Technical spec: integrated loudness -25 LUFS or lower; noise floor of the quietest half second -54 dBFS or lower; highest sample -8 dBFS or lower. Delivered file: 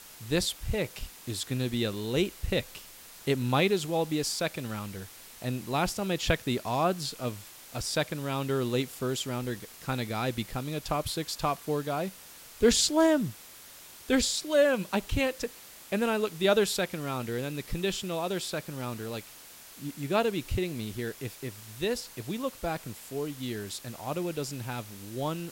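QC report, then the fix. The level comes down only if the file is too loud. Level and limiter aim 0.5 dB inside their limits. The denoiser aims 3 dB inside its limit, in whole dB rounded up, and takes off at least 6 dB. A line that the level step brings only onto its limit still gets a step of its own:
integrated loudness -30.5 LUFS: pass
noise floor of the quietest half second -50 dBFS: fail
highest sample -10.0 dBFS: pass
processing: noise reduction 7 dB, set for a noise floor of -50 dBFS

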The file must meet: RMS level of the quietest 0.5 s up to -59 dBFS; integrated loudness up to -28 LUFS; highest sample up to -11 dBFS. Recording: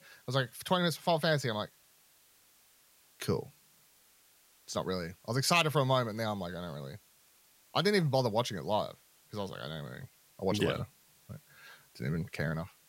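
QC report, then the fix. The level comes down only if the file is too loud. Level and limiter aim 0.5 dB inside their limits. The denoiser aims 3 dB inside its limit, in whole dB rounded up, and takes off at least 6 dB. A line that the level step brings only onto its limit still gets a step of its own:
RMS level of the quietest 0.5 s -65 dBFS: pass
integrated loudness -32.5 LUFS: pass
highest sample -13.0 dBFS: pass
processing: none needed

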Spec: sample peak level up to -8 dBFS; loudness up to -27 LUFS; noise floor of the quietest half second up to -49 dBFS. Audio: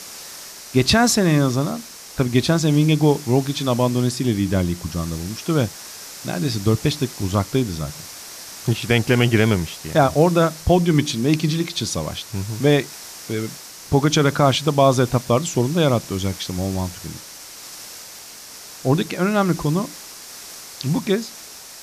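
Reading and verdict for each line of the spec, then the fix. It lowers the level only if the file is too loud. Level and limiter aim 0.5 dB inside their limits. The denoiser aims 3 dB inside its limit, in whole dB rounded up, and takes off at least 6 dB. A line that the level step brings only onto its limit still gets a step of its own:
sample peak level -4.0 dBFS: fail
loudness -20.0 LUFS: fail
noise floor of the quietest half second -39 dBFS: fail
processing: noise reduction 6 dB, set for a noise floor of -39 dBFS; trim -7.5 dB

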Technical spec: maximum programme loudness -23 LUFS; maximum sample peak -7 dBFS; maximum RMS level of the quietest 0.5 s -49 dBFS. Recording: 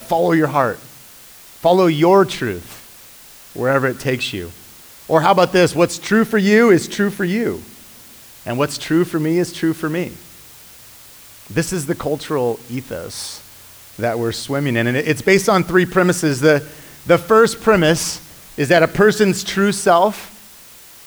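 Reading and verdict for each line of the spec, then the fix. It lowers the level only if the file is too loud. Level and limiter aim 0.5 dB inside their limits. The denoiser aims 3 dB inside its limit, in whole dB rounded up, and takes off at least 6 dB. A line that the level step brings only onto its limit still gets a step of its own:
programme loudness -16.5 LUFS: fail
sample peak -1.5 dBFS: fail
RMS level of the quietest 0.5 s -42 dBFS: fail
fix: noise reduction 6 dB, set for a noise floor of -42 dBFS; trim -7 dB

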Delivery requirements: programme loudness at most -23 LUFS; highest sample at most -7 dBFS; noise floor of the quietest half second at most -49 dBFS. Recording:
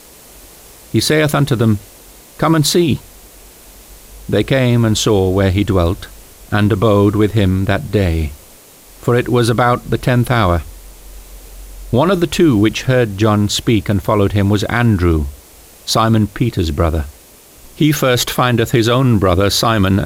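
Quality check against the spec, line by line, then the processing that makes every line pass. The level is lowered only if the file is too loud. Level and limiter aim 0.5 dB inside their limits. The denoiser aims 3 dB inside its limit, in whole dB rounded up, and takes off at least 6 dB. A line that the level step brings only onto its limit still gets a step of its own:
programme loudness -14.5 LUFS: fail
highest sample -2.5 dBFS: fail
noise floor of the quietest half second -42 dBFS: fail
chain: trim -9 dB

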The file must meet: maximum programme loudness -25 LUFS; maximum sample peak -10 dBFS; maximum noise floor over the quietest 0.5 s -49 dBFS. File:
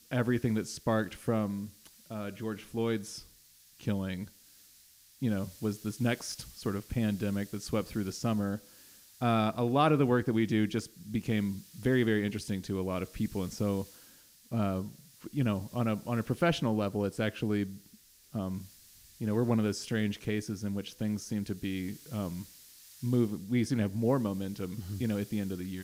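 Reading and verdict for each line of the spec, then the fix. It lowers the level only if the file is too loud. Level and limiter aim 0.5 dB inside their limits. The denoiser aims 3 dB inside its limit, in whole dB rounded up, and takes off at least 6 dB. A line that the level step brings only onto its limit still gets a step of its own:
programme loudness -32.5 LUFS: pass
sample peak -13.5 dBFS: pass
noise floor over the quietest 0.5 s -60 dBFS: pass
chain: none needed

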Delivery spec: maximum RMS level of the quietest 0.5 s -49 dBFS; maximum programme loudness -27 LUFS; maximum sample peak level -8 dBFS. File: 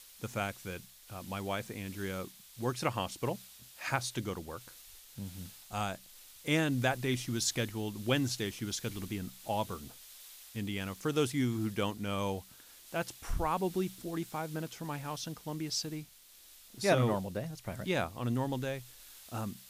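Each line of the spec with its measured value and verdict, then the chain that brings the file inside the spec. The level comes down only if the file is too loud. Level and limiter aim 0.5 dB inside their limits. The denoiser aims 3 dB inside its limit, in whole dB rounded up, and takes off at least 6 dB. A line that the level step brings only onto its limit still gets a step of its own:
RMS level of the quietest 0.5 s -58 dBFS: pass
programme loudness -35.5 LUFS: pass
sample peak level -15.5 dBFS: pass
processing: none needed

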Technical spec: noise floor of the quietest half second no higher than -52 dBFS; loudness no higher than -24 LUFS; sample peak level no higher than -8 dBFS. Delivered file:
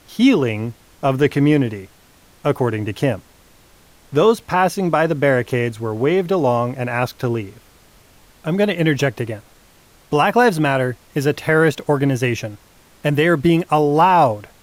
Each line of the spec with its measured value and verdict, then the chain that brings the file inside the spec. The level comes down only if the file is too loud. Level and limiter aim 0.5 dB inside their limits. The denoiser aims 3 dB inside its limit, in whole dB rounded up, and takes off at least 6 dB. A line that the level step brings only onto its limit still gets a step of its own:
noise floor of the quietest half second -50 dBFS: fail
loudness -18.0 LUFS: fail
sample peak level -4.0 dBFS: fail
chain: trim -6.5 dB

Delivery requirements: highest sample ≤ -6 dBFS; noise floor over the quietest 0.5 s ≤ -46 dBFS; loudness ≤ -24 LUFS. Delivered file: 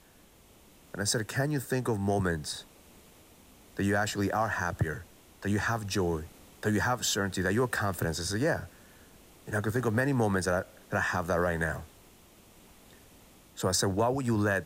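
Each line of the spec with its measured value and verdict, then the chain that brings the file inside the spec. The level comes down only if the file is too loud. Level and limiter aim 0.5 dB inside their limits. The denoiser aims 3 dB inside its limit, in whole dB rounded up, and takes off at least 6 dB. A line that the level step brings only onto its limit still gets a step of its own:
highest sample -15.0 dBFS: pass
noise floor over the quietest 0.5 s -58 dBFS: pass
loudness -30.0 LUFS: pass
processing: none needed

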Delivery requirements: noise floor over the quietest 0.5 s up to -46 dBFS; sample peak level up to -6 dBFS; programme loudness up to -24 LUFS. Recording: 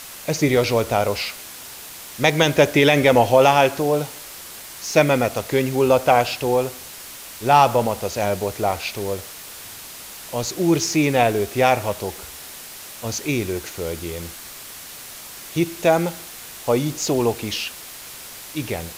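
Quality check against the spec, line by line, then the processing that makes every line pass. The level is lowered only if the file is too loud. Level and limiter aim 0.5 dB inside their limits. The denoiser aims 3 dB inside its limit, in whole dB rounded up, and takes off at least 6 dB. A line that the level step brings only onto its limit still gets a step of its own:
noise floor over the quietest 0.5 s -38 dBFS: fail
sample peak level -3.0 dBFS: fail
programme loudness -20.0 LUFS: fail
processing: noise reduction 7 dB, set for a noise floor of -38 dBFS; trim -4.5 dB

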